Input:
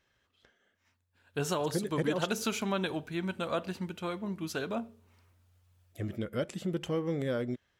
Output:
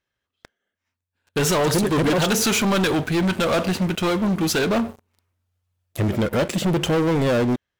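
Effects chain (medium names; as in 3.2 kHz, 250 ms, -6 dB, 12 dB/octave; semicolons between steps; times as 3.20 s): waveshaping leveller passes 5; trim +2 dB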